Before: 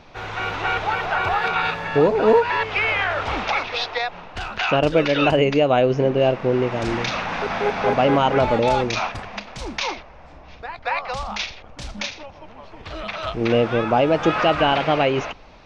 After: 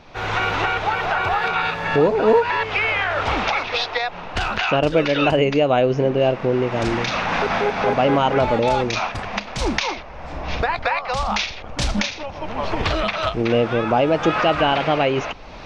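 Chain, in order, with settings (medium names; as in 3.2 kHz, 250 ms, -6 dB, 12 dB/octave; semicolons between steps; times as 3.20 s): recorder AGC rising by 25 dB/s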